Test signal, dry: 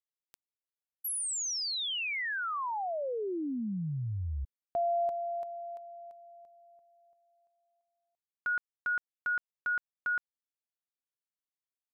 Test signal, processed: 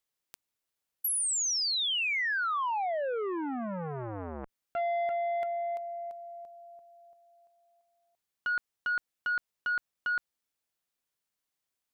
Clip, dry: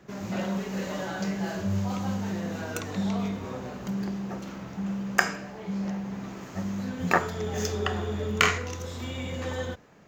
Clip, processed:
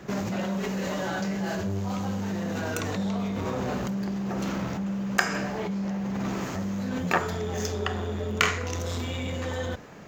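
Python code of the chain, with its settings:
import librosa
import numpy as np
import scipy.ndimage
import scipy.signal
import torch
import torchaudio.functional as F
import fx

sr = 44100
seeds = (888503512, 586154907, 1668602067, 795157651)

p1 = fx.over_compress(x, sr, threshold_db=-37.0, ratio=-0.5)
p2 = x + (p1 * librosa.db_to_amplitude(0.0))
y = fx.transformer_sat(p2, sr, knee_hz=1500.0)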